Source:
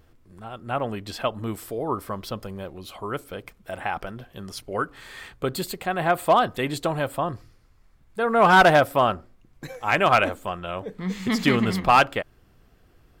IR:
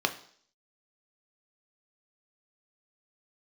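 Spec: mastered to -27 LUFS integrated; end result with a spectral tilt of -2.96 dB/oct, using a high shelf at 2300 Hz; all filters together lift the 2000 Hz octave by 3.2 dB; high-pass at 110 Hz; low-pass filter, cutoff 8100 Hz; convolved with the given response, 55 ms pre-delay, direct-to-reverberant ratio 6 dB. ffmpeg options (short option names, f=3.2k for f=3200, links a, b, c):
-filter_complex "[0:a]highpass=110,lowpass=8.1k,equalizer=f=2k:t=o:g=7.5,highshelf=f=2.3k:g=-5.5,asplit=2[a][b];[1:a]atrim=start_sample=2205,adelay=55[c];[b][c]afir=irnorm=-1:irlink=0,volume=-15.5dB[d];[a][d]amix=inputs=2:normalize=0,volume=-5.5dB"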